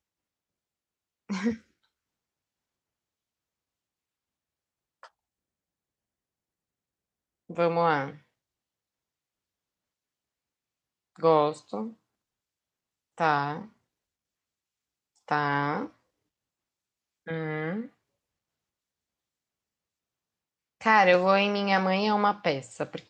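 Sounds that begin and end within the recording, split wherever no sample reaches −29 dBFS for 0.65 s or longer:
0:01.30–0:01.53
0:07.59–0:08.08
0:11.23–0:11.84
0:13.20–0:13.61
0:15.31–0:15.85
0:17.28–0:17.81

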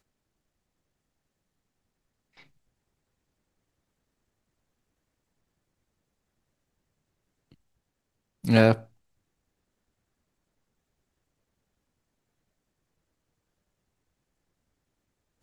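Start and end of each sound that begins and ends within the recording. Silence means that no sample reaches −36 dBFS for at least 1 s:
0:08.44–0:08.78

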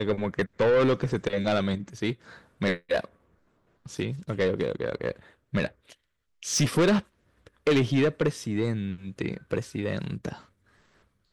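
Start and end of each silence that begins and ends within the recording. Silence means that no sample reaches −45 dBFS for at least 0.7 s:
0:03.05–0:03.86

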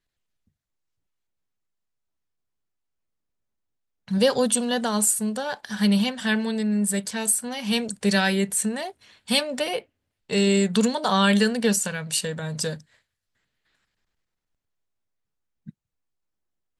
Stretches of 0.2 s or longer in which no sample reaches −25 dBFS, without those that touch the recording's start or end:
0:08.87–0:09.30
0:09.79–0:10.31

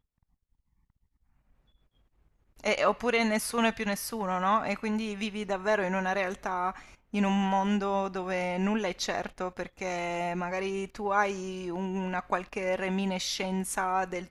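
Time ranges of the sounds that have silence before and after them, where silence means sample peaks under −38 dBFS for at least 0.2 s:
0:02.60–0:06.79

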